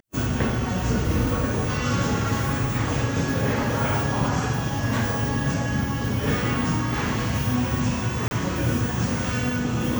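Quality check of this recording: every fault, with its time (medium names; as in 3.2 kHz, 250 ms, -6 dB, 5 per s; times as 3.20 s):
8.28–8.31 s: dropout 31 ms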